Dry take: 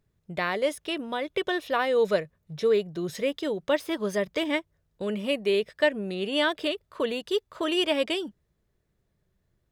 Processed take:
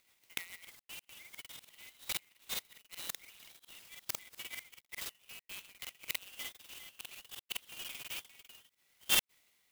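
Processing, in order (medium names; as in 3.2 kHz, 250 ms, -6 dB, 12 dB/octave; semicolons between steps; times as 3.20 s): chunks repeated in reverse 509 ms, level -10.5 dB; brick-wall FIR high-pass 1.9 kHz; 2.98–3.56 s: transient shaper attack -2 dB, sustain +10 dB; inverted gate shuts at -36 dBFS, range -32 dB; rotary cabinet horn 7 Hz, later 1 Hz, at 6.26 s; gain riding within 4 dB 0.5 s; crackling interface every 0.10 s, samples 2048, repeat, from 0.60 s; sampling jitter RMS 0.048 ms; trim +17 dB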